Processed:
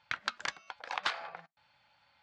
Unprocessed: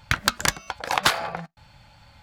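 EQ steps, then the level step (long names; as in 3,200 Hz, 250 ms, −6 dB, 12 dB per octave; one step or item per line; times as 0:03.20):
high-pass filter 1,200 Hz 6 dB per octave
linear-phase brick-wall low-pass 12,000 Hz
high-frequency loss of the air 170 metres
−8.5 dB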